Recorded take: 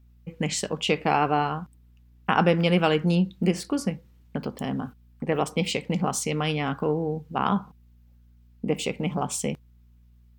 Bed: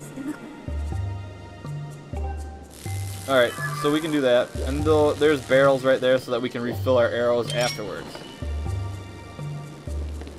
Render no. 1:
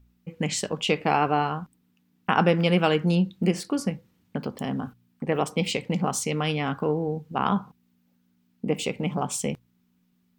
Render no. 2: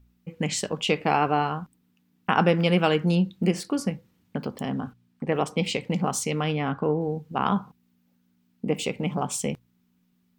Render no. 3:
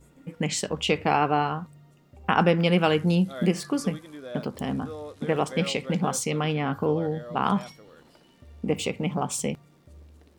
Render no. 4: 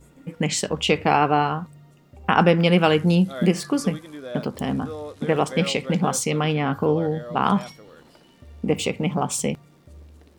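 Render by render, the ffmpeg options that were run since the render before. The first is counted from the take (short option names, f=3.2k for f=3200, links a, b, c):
-af "bandreject=f=60:t=h:w=4,bandreject=f=120:t=h:w=4"
-filter_complex "[0:a]asettb=1/sr,asplit=3[a][b][c];[a]atrim=end=4.614[d];[b]atrim=start=4.61:end=5.82,asetpts=PTS-STARTPTS,afade=t=in:d=0.004:c=qsin,afade=t=out:st=1.206:d=0.004:c=qsin,highshelf=f=12k:g=-10.5[e];[c]atrim=start=5.816[f];[d][e]acrossfade=d=0.004:c1=hsin:c2=qsin[g];[g][f]acrossfade=d=0.004:c1=qsin:c2=hsin,asettb=1/sr,asplit=3[h][i][j];[h]atrim=end=6.444[k];[i]atrim=start=6.44:end=7.01,asetpts=PTS-STARTPTS,afade=t=in:d=0.004:c=qsin,afade=t=out:st=0.566:d=0.004:c=qsin,aemphasis=mode=reproduction:type=75fm[l];[j]atrim=start=7.006[m];[k][l]acrossfade=d=0.004:c1=hsin:c2=qsin[n];[n][m]acrossfade=d=0.004:c1=qsin:c2=hsin"
-filter_complex "[1:a]volume=-19.5dB[a];[0:a][a]amix=inputs=2:normalize=0"
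-af "volume=4dB,alimiter=limit=-3dB:level=0:latency=1"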